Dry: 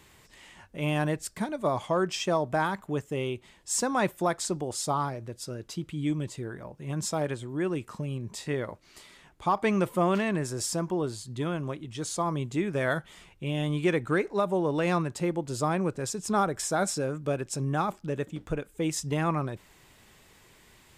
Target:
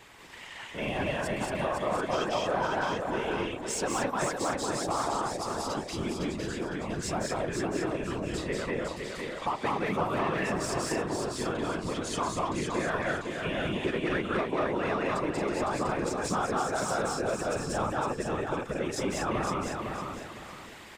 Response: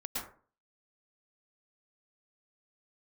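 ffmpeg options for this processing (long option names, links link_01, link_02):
-filter_complex "[0:a]asplit=2[link_01][link_02];[link_02]aecho=0:1:186.6|224.5:0.891|0.708[link_03];[link_01][link_03]amix=inputs=2:normalize=0,asplit=2[link_04][link_05];[link_05]highpass=frequency=720:poles=1,volume=12dB,asoftclip=type=tanh:threshold=-13.5dB[link_06];[link_04][link_06]amix=inputs=2:normalize=0,lowpass=frequency=2600:poles=1,volume=-6dB,afftfilt=real='hypot(re,im)*cos(2*PI*random(0))':imag='hypot(re,im)*sin(2*PI*random(1))':win_size=512:overlap=0.75,acompressor=threshold=-42dB:ratio=2,asplit=2[link_07][link_08];[link_08]aecho=0:1:508|1016|1524|2032:0.562|0.174|0.054|0.0168[link_09];[link_07][link_09]amix=inputs=2:normalize=0,volume=7.5dB"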